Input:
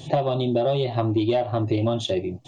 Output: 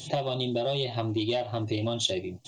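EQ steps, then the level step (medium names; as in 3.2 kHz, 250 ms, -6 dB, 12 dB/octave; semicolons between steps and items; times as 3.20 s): FFT filter 1.4 kHz 0 dB, 3.1 kHz +9 dB, 6.3 kHz +14 dB; -7.0 dB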